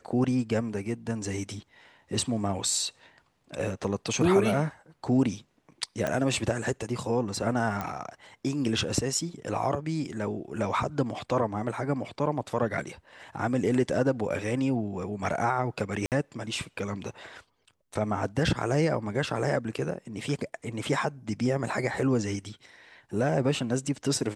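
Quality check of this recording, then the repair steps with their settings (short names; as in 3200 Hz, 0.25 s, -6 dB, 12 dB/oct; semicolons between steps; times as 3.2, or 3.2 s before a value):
6.07 pop -15 dBFS
7.81 pop -18 dBFS
16.06–16.12 gap 58 ms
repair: de-click; interpolate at 16.06, 58 ms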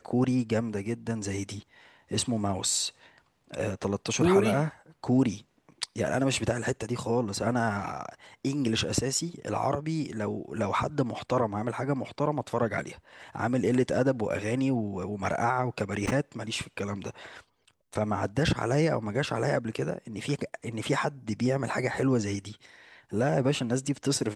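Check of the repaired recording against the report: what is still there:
none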